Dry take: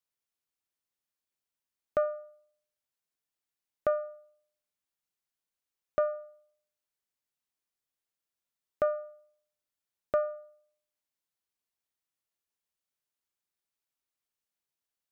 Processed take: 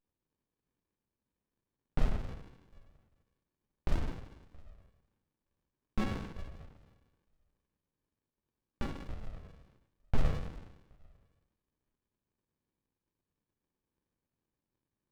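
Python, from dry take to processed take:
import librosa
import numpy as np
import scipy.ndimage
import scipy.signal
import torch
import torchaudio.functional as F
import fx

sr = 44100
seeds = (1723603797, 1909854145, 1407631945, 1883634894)

p1 = fx.dynamic_eq(x, sr, hz=1800.0, q=0.88, threshold_db=-44.0, ratio=4.0, max_db=5, at=(3.9, 6.07))
p2 = fx.comb_fb(p1, sr, f0_hz=68.0, decay_s=1.6, harmonics='all', damping=0.0, mix_pct=90)
p3 = fx.wow_flutter(p2, sr, seeds[0], rate_hz=2.1, depth_cents=150.0)
p4 = fx.filter_lfo_highpass(p3, sr, shape='saw_up', hz=1.1, low_hz=610.0, high_hz=2200.0, q=3.6)
p5 = 10.0 ** (-36.5 / 20.0) * np.tanh(p4 / 10.0 ** (-36.5 / 20.0))
p6 = p4 + F.gain(torch.from_numpy(p5), -7.0).numpy()
p7 = fx.rev_fdn(p6, sr, rt60_s=0.8, lf_ratio=1.0, hf_ratio=0.85, size_ms=23.0, drr_db=-3.0)
p8 = fx.running_max(p7, sr, window=65)
y = F.gain(torch.from_numpy(p8), 12.5).numpy()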